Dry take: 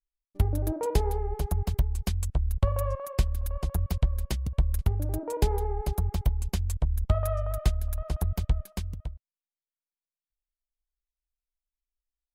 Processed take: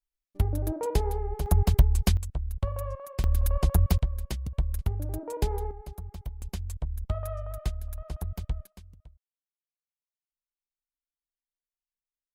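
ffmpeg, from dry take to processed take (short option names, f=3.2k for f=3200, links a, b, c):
-af "asetnsamples=n=441:p=0,asendcmd='1.46 volume volume 6dB;2.17 volume volume -5dB;3.24 volume volume 6dB;3.99 volume volume -3dB;5.71 volume volume -12dB;6.42 volume volume -6dB;8.67 volume volume -16dB',volume=-1dB"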